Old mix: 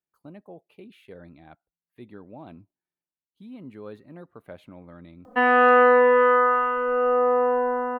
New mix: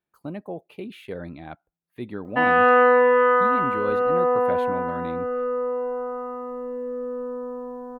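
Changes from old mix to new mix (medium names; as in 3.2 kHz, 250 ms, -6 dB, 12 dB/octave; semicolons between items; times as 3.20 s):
speech +10.5 dB; background: entry -3.00 s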